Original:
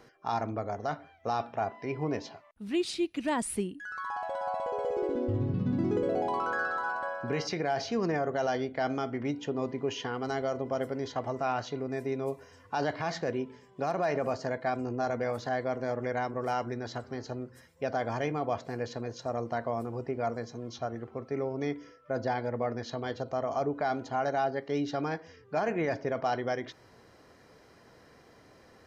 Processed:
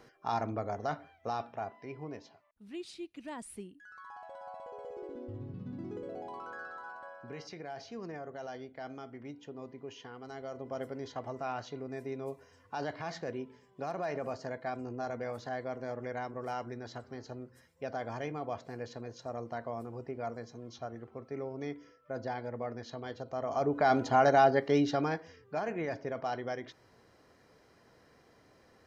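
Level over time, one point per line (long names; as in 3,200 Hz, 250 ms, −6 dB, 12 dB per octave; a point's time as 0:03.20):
0:00.97 −1.5 dB
0:02.30 −13 dB
0:10.29 −13 dB
0:10.79 −6.5 dB
0:23.27 −6.5 dB
0:23.97 +6 dB
0:24.58 +6 dB
0:25.64 −5.5 dB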